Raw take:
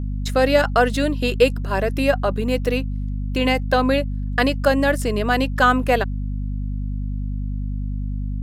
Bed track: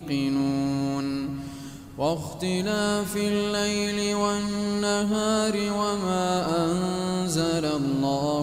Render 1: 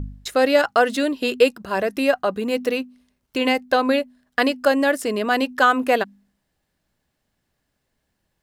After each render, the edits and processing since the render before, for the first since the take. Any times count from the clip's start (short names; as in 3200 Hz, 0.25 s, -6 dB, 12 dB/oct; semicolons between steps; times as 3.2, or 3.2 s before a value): de-hum 50 Hz, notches 5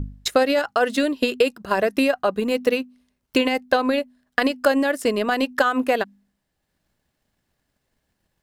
limiter -13 dBFS, peak gain reduction 9.5 dB; transient shaper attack +7 dB, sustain -3 dB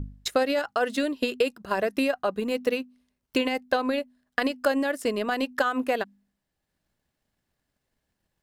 gain -5.5 dB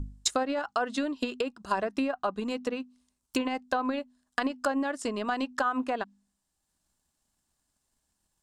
treble ducked by the level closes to 1800 Hz, closed at -20.5 dBFS; graphic EQ 125/500/1000/2000/8000 Hz -6/-8/+4/-7/+12 dB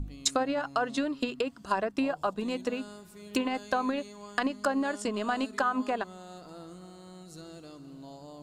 add bed track -22 dB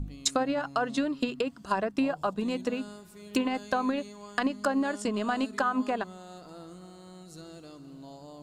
dynamic EQ 160 Hz, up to +5 dB, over -46 dBFS, Q 1.1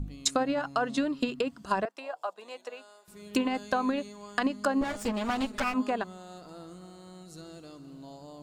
1.85–3.08 ladder high-pass 490 Hz, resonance 30%; 4.81–5.74 minimum comb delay 8.3 ms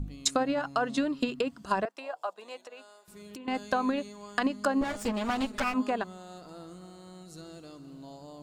2.66–3.48 compressor, threshold -42 dBFS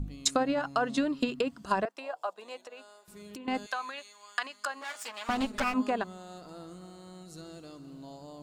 3.66–5.29 HPF 1200 Hz